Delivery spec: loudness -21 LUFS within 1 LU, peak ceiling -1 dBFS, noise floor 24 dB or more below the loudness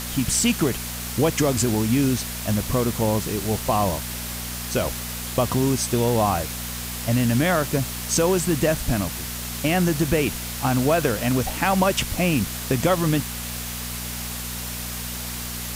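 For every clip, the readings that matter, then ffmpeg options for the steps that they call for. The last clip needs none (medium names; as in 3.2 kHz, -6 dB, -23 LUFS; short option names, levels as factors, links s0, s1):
hum 60 Hz; highest harmonic 240 Hz; hum level -32 dBFS; noise floor -31 dBFS; noise floor target -47 dBFS; loudness -23.0 LUFS; peak level -5.5 dBFS; loudness target -21.0 LUFS
-> -af "bandreject=f=60:t=h:w=4,bandreject=f=120:t=h:w=4,bandreject=f=180:t=h:w=4,bandreject=f=240:t=h:w=4"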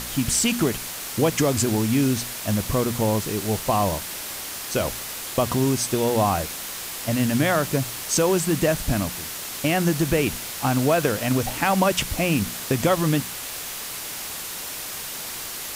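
hum not found; noise floor -33 dBFS; noise floor target -48 dBFS
-> -af "afftdn=nr=15:nf=-33"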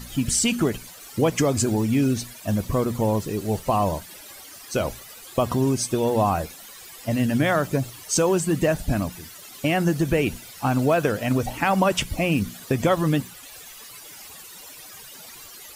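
noise floor -43 dBFS; noise floor target -48 dBFS
-> -af "afftdn=nr=6:nf=-43"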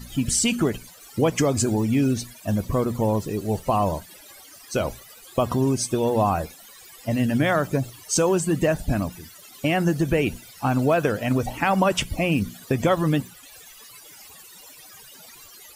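noise floor -47 dBFS; noise floor target -48 dBFS
-> -af "afftdn=nr=6:nf=-47"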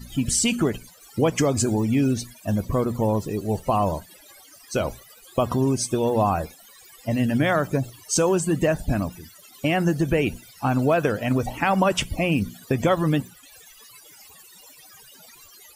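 noise floor -50 dBFS; loudness -23.5 LUFS; peak level -6.5 dBFS; loudness target -21.0 LUFS
-> -af "volume=1.33"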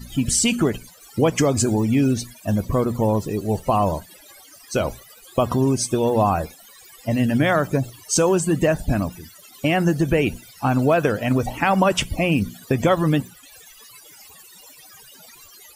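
loudness -21.0 LUFS; peak level -4.0 dBFS; noise floor -47 dBFS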